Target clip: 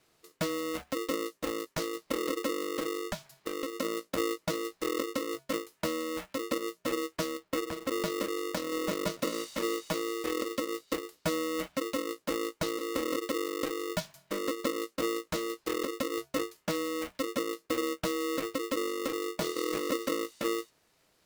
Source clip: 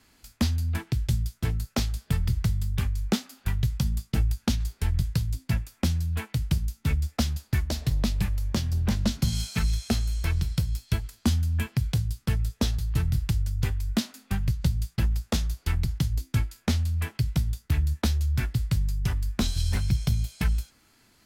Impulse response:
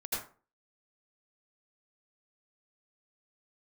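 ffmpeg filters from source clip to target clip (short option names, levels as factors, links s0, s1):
-filter_complex "[0:a]asettb=1/sr,asplit=3[s0][s1][s2];[s0]atrim=end=2.994[s3];[s1]atrim=start=2.99:end=3.76,asetpts=PTS-STARTPTS,afade=t=in:d=0.004:c=qsin,afade=t=out:st=0.766:d=0.004:c=qsin,acompressor=threshold=0.0631:ratio=6[s4];[s2]atrim=start=3.756[s5];[s3][s4]acrossfade=d=0.004:c1=hsin:c2=qsin[s6];[s6][s5]acrossfade=d=0.004:c1=qsin:c2=hsin,asettb=1/sr,asplit=3[s7][s8][s9];[s7]atrim=end=7.374[s10];[s8]atrim=start=7.37:end=8.01,asetpts=PTS-STARTPTS,afade=t=in:d=0.004:c=qsin,afade=t=out:st=0.636:d=0.004:c=qsin,lowpass=2400[s11];[s9]atrim=start=8.006[s12];[s10][s11]acrossfade=d=0.004:c1=hsin:c2=qsin[s13];[s13][s12]acrossfade=d=0.004:c1=qsin:c2=hsin,aeval=exprs='val(0)*sgn(sin(2*PI*400*n/s))':c=same,volume=0.398"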